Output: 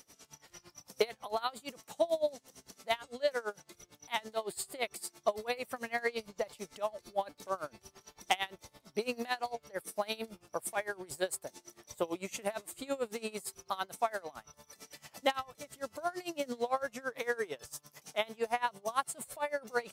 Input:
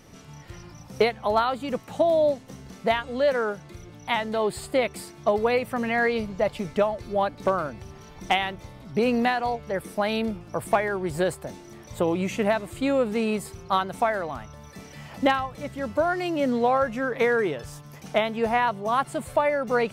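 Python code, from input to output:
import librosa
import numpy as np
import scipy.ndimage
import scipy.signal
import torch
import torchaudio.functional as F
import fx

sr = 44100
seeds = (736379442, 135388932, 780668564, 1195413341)

y = fx.bass_treble(x, sr, bass_db=-12, treble_db=13)
y = y * 10.0 ** (-23 * (0.5 - 0.5 * np.cos(2.0 * np.pi * 8.9 * np.arange(len(y)) / sr)) / 20.0)
y = y * 10.0 ** (-5.5 / 20.0)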